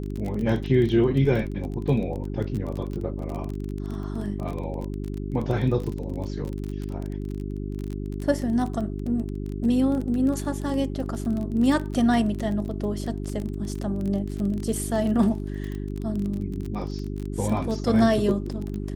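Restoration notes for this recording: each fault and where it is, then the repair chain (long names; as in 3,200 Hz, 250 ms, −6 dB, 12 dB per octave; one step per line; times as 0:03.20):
surface crackle 23 per second −29 dBFS
mains hum 50 Hz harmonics 8 −31 dBFS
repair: click removal
hum removal 50 Hz, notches 8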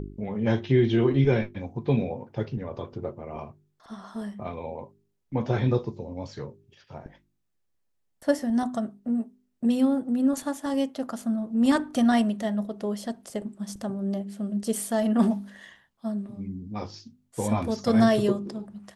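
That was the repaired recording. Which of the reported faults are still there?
none of them is left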